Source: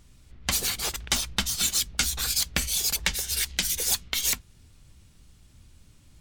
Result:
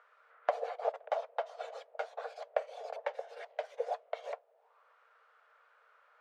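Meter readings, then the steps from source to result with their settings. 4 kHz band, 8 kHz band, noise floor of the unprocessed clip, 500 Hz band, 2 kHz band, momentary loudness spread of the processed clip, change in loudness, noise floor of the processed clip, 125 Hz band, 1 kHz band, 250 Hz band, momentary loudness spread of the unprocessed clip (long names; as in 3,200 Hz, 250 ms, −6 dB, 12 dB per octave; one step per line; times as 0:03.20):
−30.0 dB, below −40 dB, −56 dBFS, +8.5 dB, −15.0 dB, 9 LU, −14.0 dB, −68 dBFS, below −40 dB, +2.0 dB, below −30 dB, 4 LU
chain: Chebyshev high-pass with heavy ripple 450 Hz, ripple 3 dB
envelope-controlled low-pass 650–1,400 Hz down, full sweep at −36.5 dBFS
level +2 dB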